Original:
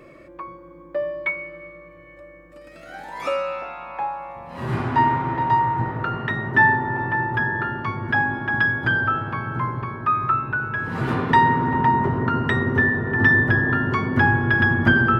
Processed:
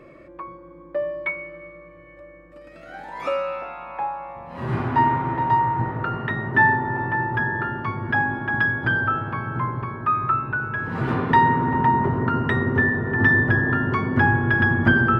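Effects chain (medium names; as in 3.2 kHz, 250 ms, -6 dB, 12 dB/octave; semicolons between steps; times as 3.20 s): treble shelf 4.4 kHz -10.5 dB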